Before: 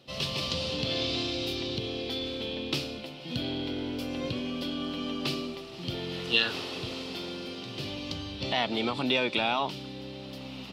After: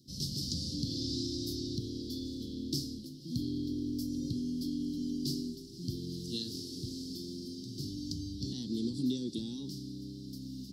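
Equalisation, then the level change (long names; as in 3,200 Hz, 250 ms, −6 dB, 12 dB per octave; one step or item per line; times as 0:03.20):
elliptic band-stop filter 310–5,000 Hz, stop band 40 dB
high-shelf EQ 5,800 Hz +4.5 dB
0.0 dB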